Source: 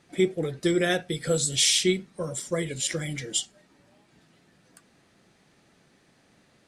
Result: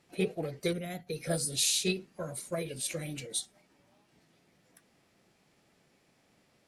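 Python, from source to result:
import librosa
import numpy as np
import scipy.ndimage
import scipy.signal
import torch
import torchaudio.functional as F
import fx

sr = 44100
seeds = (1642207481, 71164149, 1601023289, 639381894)

y = fx.formant_shift(x, sr, semitones=3)
y = fx.spec_box(y, sr, start_s=0.73, length_s=0.34, low_hz=280.0, high_hz=10000.0, gain_db=-11)
y = F.gain(torch.from_numpy(y), -6.5).numpy()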